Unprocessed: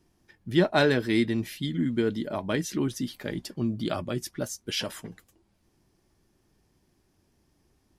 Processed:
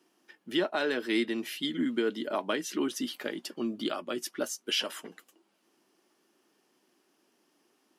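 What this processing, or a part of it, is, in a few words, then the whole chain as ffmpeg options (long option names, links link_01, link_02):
laptop speaker: -af "highpass=frequency=260:width=0.5412,highpass=frequency=260:width=1.3066,equalizer=frequency=1300:width_type=o:width=0.54:gain=4.5,equalizer=frequency=2900:width_type=o:width=0.25:gain=7.5,alimiter=limit=-19dB:level=0:latency=1:release=441,volume=1dB"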